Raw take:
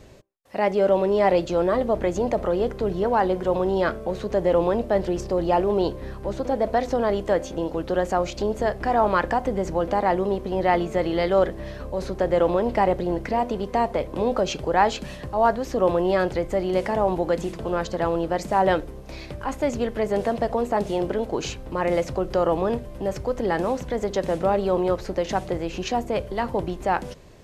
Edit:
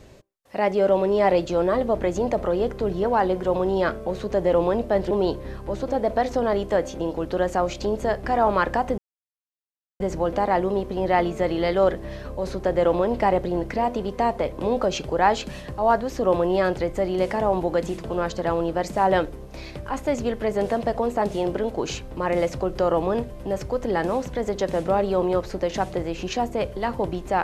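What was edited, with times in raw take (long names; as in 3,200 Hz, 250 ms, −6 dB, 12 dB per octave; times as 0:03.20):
0:05.11–0:05.68: remove
0:09.55: splice in silence 1.02 s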